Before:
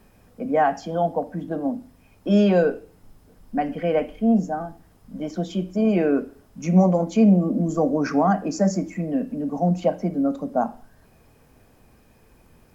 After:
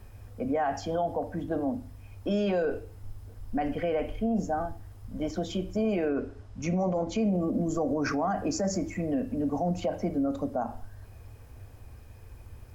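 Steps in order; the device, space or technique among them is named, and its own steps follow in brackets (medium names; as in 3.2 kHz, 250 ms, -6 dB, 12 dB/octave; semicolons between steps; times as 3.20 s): car stereo with a boomy subwoofer (resonant low shelf 130 Hz +8.5 dB, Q 3; peak limiter -20.5 dBFS, peak gain reduction 10.5 dB); 6.09–7.18 s: low-pass 6.5 kHz 12 dB/octave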